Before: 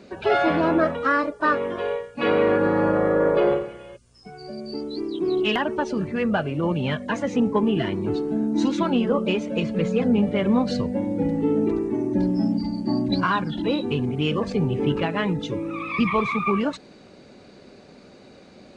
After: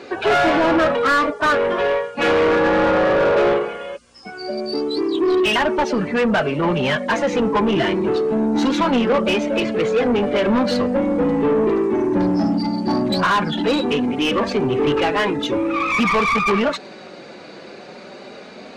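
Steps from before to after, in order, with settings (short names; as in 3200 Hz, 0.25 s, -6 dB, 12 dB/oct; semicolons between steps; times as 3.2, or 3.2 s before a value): flange 0.2 Hz, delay 2.4 ms, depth 3.8 ms, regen -35%; overdrive pedal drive 23 dB, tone 2800 Hz, clips at -11.5 dBFS; gain +2.5 dB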